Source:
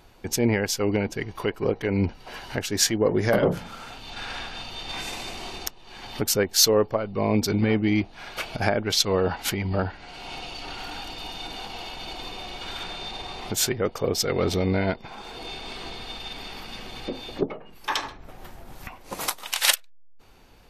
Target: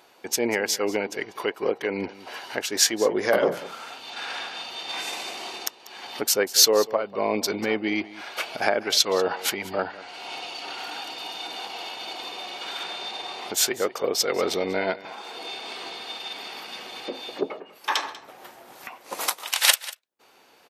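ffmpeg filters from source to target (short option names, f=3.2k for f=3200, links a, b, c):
-filter_complex "[0:a]highpass=390,asplit=2[a][b];[b]aecho=0:1:192:0.126[c];[a][c]amix=inputs=2:normalize=0,volume=2dB"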